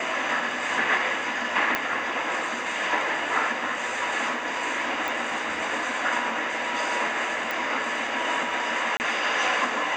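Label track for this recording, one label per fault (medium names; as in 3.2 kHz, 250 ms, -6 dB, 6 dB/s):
1.750000	1.750000	pop -8 dBFS
5.080000	5.080000	pop
7.510000	7.510000	pop
8.970000	9.000000	dropout 29 ms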